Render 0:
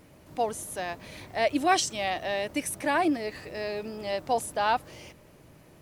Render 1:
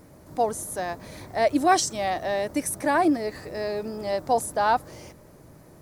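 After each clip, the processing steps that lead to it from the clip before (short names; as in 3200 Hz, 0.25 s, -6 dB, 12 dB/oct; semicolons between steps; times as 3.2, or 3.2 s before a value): bell 2800 Hz -11.5 dB 0.84 oct; gain +4.5 dB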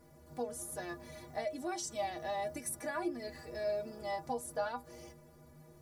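compressor 6:1, threshold -24 dBFS, peak gain reduction 10.5 dB; metallic resonator 72 Hz, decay 0.38 s, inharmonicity 0.03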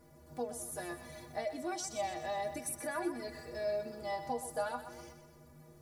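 thinning echo 0.125 s, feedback 51%, level -10 dB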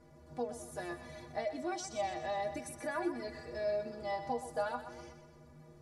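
air absorption 66 m; gain +1 dB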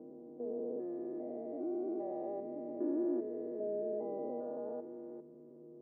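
stepped spectrum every 0.4 s; Butterworth band-pass 350 Hz, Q 1.6; gain +10.5 dB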